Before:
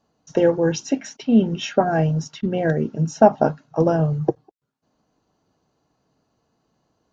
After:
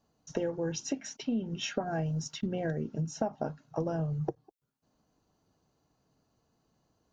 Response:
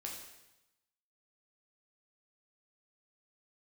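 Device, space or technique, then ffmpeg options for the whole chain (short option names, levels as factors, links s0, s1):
ASMR close-microphone chain: -filter_complex "[0:a]lowshelf=f=120:g=7.5,acompressor=threshold=0.0708:ratio=6,highshelf=f=6500:g=8,asettb=1/sr,asplit=3[s0][s1][s2];[s0]atrim=end=2.064[s3];[s1]atrim=start=2.06:end=2.47,asetpts=PTS-STARTPTS,afade=t=in:d=0.004:c=qsin,afade=t=out:st=0.406:d=0.004:c=qsin,highshelf=f=5100:g=6[s4];[s2]atrim=start=2.466[s5];[s3][s4]acrossfade=d=0.004:c1=hsin:c2=qsin[s6];[s6][s5]acrossfade=d=0.004:c1=qsin:c2=hsin,volume=0.473"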